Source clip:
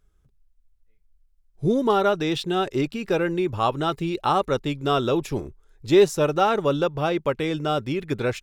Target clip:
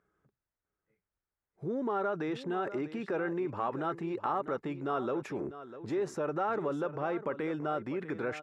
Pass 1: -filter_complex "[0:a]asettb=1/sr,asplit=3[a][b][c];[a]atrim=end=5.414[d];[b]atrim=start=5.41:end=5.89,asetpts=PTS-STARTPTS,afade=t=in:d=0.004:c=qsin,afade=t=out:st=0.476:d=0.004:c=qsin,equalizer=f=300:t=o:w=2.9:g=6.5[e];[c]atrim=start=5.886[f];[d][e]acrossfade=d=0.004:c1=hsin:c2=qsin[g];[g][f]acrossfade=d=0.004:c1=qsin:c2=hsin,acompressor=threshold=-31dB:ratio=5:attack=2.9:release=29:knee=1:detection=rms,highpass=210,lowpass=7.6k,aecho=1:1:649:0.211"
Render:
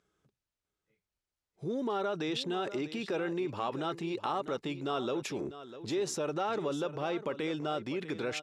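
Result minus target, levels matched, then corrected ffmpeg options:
4000 Hz band +13.0 dB
-filter_complex "[0:a]asettb=1/sr,asplit=3[a][b][c];[a]atrim=end=5.414[d];[b]atrim=start=5.41:end=5.89,asetpts=PTS-STARTPTS,afade=t=in:d=0.004:c=qsin,afade=t=out:st=0.476:d=0.004:c=qsin,equalizer=f=300:t=o:w=2.9:g=6.5[e];[c]atrim=start=5.886[f];[d][e]acrossfade=d=0.004:c1=hsin:c2=qsin[g];[g][f]acrossfade=d=0.004:c1=qsin:c2=hsin,acompressor=threshold=-31dB:ratio=5:attack=2.9:release=29:knee=1:detection=rms,highpass=210,lowpass=7.6k,highshelf=f=2.4k:t=q:w=1.5:g=-11.5,aecho=1:1:649:0.211"

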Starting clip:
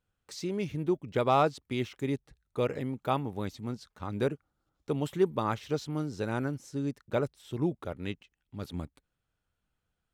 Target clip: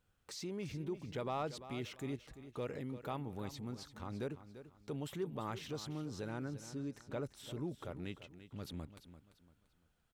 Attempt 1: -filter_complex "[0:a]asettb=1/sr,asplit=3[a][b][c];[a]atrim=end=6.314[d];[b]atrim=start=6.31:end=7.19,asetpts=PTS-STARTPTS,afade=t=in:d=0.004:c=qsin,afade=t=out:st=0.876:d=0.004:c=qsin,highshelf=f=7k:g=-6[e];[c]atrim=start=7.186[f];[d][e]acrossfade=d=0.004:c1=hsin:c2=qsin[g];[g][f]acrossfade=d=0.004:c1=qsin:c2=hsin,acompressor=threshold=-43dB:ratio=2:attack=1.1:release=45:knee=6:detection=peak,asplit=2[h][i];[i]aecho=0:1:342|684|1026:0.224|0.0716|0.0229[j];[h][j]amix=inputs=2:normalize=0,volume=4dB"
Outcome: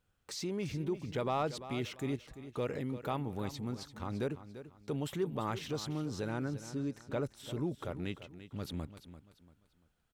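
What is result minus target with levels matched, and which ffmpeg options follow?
compressor: peak gain reduction -5.5 dB
-filter_complex "[0:a]asettb=1/sr,asplit=3[a][b][c];[a]atrim=end=6.314[d];[b]atrim=start=6.31:end=7.19,asetpts=PTS-STARTPTS,afade=t=in:d=0.004:c=qsin,afade=t=out:st=0.876:d=0.004:c=qsin,highshelf=f=7k:g=-6[e];[c]atrim=start=7.186[f];[d][e]acrossfade=d=0.004:c1=hsin:c2=qsin[g];[g][f]acrossfade=d=0.004:c1=qsin:c2=hsin,acompressor=threshold=-54dB:ratio=2:attack=1.1:release=45:knee=6:detection=peak,asplit=2[h][i];[i]aecho=0:1:342|684|1026:0.224|0.0716|0.0229[j];[h][j]amix=inputs=2:normalize=0,volume=4dB"

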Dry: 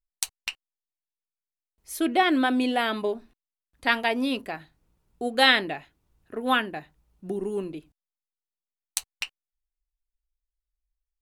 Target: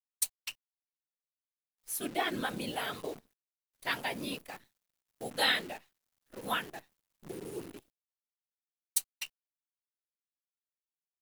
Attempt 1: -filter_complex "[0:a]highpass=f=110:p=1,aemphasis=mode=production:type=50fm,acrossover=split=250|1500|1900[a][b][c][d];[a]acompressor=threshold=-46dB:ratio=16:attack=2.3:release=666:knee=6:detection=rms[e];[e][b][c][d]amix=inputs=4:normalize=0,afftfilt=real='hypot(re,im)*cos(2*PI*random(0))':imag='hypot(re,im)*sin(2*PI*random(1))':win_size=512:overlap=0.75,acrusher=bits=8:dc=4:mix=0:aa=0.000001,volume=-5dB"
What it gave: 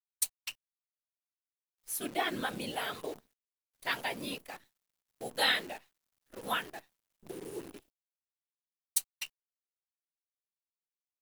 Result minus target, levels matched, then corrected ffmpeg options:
compressor: peak gain reduction +10 dB
-filter_complex "[0:a]highpass=f=110:p=1,aemphasis=mode=production:type=50fm,acrossover=split=250|1500|1900[a][b][c][d];[a]acompressor=threshold=-35.5dB:ratio=16:attack=2.3:release=666:knee=6:detection=rms[e];[e][b][c][d]amix=inputs=4:normalize=0,afftfilt=real='hypot(re,im)*cos(2*PI*random(0))':imag='hypot(re,im)*sin(2*PI*random(1))':win_size=512:overlap=0.75,acrusher=bits=8:dc=4:mix=0:aa=0.000001,volume=-5dB"

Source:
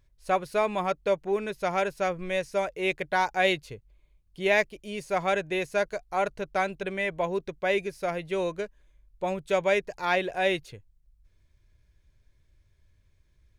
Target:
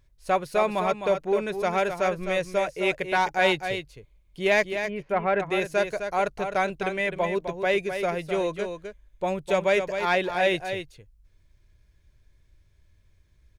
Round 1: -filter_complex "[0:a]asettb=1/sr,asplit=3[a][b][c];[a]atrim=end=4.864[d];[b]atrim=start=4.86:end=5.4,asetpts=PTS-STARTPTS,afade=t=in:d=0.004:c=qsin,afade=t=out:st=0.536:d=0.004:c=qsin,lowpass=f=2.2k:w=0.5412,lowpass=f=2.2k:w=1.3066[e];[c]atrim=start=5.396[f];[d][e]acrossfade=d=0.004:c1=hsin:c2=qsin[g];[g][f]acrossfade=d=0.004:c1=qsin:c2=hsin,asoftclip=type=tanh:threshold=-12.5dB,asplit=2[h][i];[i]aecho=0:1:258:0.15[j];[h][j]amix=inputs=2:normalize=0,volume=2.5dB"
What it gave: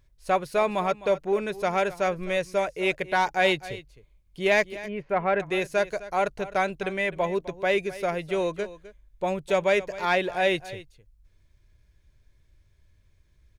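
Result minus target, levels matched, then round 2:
echo-to-direct -8.5 dB
-filter_complex "[0:a]asettb=1/sr,asplit=3[a][b][c];[a]atrim=end=4.864[d];[b]atrim=start=4.86:end=5.4,asetpts=PTS-STARTPTS,afade=t=in:d=0.004:c=qsin,afade=t=out:st=0.536:d=0.004:c=qsin,lowpass=f=2.2k:w=0.5412,lowpass=f=2.2k:w=1.3066[e];[c]atrim=start=5.396[f];[d][e]acrossfade=d=0.004:c1=hsin:c2=qsin[g];[g][f]acrossfade=d=0.004:c1=qsin:c2=hsin,asoftclip=type=tanh:threshold=-12.5dB,asplit=2[h][i];[i]aecho=0:1:258:0.398[j];[h][j]amix=inputs=2:normalize=0,volume=2.5dB"

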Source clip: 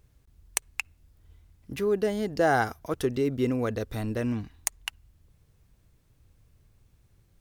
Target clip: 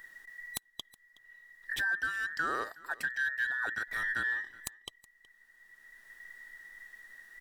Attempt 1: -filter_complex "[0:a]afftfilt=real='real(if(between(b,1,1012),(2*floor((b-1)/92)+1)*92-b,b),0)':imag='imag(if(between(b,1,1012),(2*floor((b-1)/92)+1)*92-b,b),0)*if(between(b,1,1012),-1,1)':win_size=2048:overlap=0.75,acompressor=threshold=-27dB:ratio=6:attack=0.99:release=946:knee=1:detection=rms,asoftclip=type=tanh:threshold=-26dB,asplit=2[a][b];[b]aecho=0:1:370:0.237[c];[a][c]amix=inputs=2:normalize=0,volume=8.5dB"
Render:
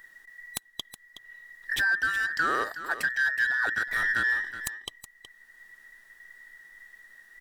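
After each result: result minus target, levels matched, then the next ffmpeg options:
compressor: peak gain reduction -7.5 dB; echo-to-direct +9.5 dB
-filter_complex "[0:a]afftfilt=real='real(if(between(b,1,1012),(2*floor((b-1)/92)+1)*92-b,b),0)':imag='imag(if(between(b,1,1012),(2*floor((b-1)/92)+1)*92-b,b),0)*if(between(b,1,1012),-1,1)':win_size=2048:overlap=0.75,acompressor=threshold=-36dB:ratio=6:attack=0.99:release=946:knee=1:detection=rms,asoftclip=type=tanh:threshold=-26dB,asplit=2[a][b];[b]aecho=0:1:370:0.237[c];[a][c]amix=inputs=2:normalize=0,volume=8.5dB"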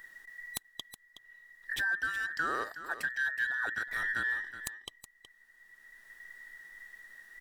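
echo-to-direct +9.5 dB
-filter_complex "[0:a]afftfilt=real='real(if(between(b,1,1012),(2*floor((b-1)/92)+1)*92-b,b),0)':imag='imag(if(between(b,1,1012),(2*floor((b-1)/92)+1)*92-b,b),0)*if(between(b,1,1012),-1,1)':win_size=2048:overlap=0.75,acompressor=threshold=-36dB:ratio=6:attack=0.99:release=946:knee=1:detection=rms,asoftclip=type=tanh:threshold=-26dB,asplit=2[a][b];[b]aecho=0:1:370:0.0794[c];[a][c]amix=inputs=2:normalize=0,volume=8.5dB"

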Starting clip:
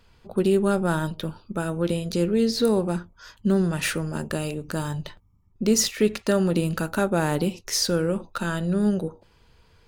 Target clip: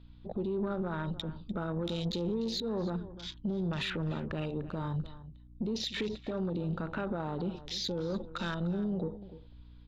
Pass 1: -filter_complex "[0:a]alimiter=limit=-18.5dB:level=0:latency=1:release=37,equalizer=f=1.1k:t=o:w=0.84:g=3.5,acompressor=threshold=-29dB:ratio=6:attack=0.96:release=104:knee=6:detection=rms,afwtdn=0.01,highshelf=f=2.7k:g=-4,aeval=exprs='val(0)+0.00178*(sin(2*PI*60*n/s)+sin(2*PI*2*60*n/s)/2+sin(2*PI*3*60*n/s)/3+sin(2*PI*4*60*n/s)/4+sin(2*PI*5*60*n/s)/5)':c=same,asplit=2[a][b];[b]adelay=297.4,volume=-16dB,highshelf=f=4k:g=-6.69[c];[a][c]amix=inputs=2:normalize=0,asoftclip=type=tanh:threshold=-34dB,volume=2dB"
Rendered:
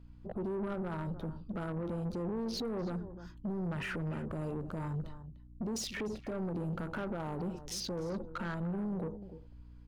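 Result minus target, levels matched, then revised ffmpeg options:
soft clip: distortion +12 dB; 4000 Hz band -4.5 dB
-filter_complex "[0:a]alimiter=limit=-18.5dB:level=0:latency=1:release=37,lowpass=f=3.7k:t=q:w=6.9,equalizer=f=1.1k:t=o:w=0.84:g=3.5,acompressor=threshold=-29dB:ratio=6:attack=0.96:release=104:knee=6:detection=rms,afwtdn=0.01,highshelf=f=2.7k:g=-4,aeval=exprs='val(0)+0.00178*(sin(2*PI*60*n/s)+sin(2*PI*2*60*n/s)/2+sin(2*PI*3*60*n/s)/3+sin(2*PI*4*60*n/s)/4+sin(2*PI*5*60*n/s)/5)':c=same,asplit=2[a][b];[b]adelay=297.4,volume=-16dB,highshelf=f=4k:g=-6.69[c];[a][c]amix=inputs=2:normalize=0,asoftclip=type=tanh:threshold=-25.5dB,volume=2dB"

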